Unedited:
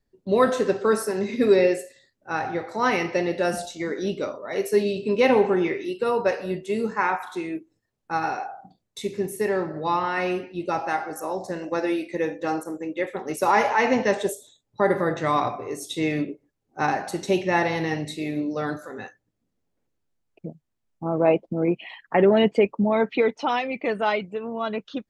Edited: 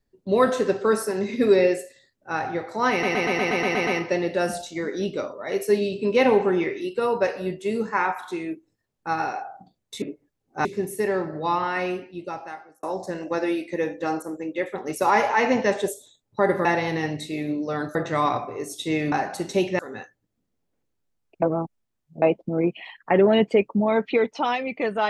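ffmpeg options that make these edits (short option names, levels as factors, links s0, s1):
-filter_complex "[0:a]asplit=18[s0][s1][s2][s3][s4][s5][s6][s7][s8][s9][s10][s11][s12][s13][s14][s15][s16][s17];[s0]atrim=end=3.032[s18];[s1]atrim=start=2.908:end=3.032[s19];[s2]atrim=start=2.908:end=3.032[s20];[s3]atrim=start=2.908:end=3.032[s21];[s4]atrim=start=2.908:end=3.032[s22];[s5]atrim=start=2.908:end=3.032[s23];[s6]atrim=start=2.908:end=3.032[s24];[s7]atrim=start=2.908:end=3.032[s25];[s8]atrim=start=2.908:end=9.062[s26];[s9]atrim=start=16.228:end=16.862[s27];[s10]atrim=start=9.058:end=11.24,asetpts=PTS-STARTPTS,afade=t=out:st=1.042:d=1.14[s28];[s11]atrim=start=11.24:end=15.062,asetpts=PTS-STARTPTS,afade=t=in:d=0.004:c=hsin[s29];[s12]atrim=start=17.528:end=18.832[s30];[s13]atrim=start=15.058:end=16.232[s31];[s14]atrim=start=16.858:end=17.532[s32];[s15]atrim=start=18.828:end=20.462[s33];[s16]atrim=start=20.458:end=21.262,asetpts=PTS-STARTPTS,areverse[s34];[s17]atrim=start=21.258[s35];[s18][s19]acrossfade=d=0.004:c1=hsin:c2=hsin[s36];[s36][s20]acrossfade=d=0.004:c1=hsin:c2=hsin[s37];[s37][s21]acrossfade=d=0.004:c1=hsin:c2=hsin[s38];[s38][s22]acrossfade=d=0.004:c1=hsin:c2=hsin[s39];[s39][s23]acrossfade=d=0.004:c1=hsin:c2=hsin[s40];[s40][s24]acrossfade=d=0.004:c1=hsin:c2=hsin[s41];[s41][s25]acrossfade=d=0.004:c1=hsin:c2=hsin[s42];[s42][s26]acrossfade=d=0.004:c1=hsin:c2=hsin[s43];[s43][s27]acrossfade=d=0.004:c1=hsin:c2=hsin[s44];[s28][s29]concat=n=2:v=0:a=1[s45];[s44][s45]acrossfade=d=0.004:c1=hsin:c2=hsin[s46];[s46][s30]acrossfade=d=0.004:c1=hsin:c2=hsin[s47];[s47][s31]acrossfade=d=0.004:c1=hsin:c2=hsin[s48];[s48][s32]acrossfade=d=0.004:c1=hsin:c2=hsin[s49];[s49][s33]acrossfade=d=0.004:c1=hsin:c2=hsin[s50];[s50][s34]acrossfade=d=0.004:c1=hsin:c2=hsin[s51];[s51][s35]acrossfade=d=0.004:c1=hsin:c2=hsin"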